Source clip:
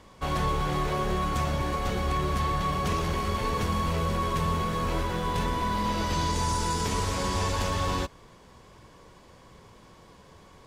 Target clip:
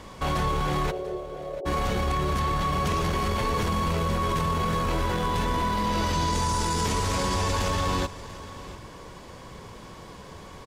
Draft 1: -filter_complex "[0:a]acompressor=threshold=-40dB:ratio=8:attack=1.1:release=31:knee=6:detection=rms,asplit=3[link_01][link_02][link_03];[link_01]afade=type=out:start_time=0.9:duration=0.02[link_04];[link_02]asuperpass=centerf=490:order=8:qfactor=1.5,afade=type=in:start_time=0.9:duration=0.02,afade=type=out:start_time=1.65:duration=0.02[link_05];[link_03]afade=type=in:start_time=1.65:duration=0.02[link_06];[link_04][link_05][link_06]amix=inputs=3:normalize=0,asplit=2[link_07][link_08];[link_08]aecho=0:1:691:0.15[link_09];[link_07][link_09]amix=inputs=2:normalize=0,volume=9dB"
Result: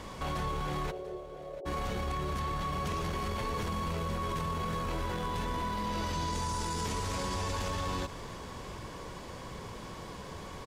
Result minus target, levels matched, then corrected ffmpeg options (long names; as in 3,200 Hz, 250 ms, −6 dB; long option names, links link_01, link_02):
downward compressor: peak gain reduction +8.5 dB
-filter_complex "[0:a]acompressor=threshold=-30.5dB:ratio=8:attack=1.1:release=31:knee=6:detection=rms,asplit=3[link_01][link_02][link_03];[link_01]afade=type=out:start_time=0.9:duration=0.02[link_04];[link_02]asuperpass=centerf=490:order=8:qfactor=1.5,afade=type=in:start_time=0.9:duration=0.02,afade=type=out:start_time=1.65:duration=0.02[link_05];[link_03]afade=type=in:start_time=1.65:duration=0.02[link_06];[link_04][link_05][link_06]amix=inputs=3:normalize=0,asplit=2[link_07][link_08];[link_08]aecho=0:1:691:0.15[link_09];[link_07][link_09]amix=inputs=2:normalize=0,volume=9dB"